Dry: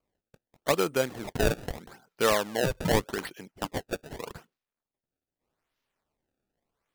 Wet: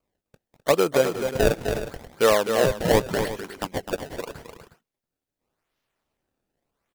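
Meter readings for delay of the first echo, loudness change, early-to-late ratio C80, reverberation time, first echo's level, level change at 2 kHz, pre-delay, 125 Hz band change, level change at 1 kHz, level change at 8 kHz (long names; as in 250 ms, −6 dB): 256 ms, +5.5 dB, no reverb audible, no reverb audible, −7.5 dB, +3.5 dB, no reverb audible, +3.5 dB, +4.5 dB, +3.5 dB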